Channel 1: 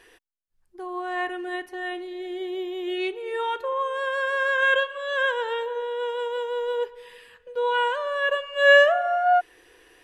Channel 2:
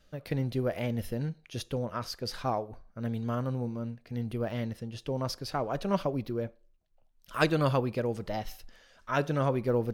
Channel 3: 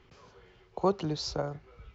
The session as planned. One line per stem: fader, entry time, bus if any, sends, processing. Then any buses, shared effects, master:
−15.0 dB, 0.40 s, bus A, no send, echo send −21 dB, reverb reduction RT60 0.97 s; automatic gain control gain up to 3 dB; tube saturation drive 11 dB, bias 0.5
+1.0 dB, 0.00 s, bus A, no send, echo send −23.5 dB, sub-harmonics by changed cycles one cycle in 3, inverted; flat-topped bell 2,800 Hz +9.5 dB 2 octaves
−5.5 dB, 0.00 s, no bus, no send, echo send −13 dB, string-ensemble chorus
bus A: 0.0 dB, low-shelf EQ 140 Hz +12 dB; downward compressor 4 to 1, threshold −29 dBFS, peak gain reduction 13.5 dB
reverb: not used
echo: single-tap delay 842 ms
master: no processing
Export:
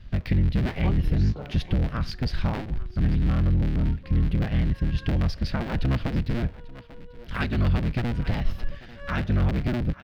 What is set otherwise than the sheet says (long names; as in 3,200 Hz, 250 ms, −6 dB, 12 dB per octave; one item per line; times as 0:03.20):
stem 1 −15.0 dB → −24.0 dB
master: extra bass and treble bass +11 dB, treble −8 dB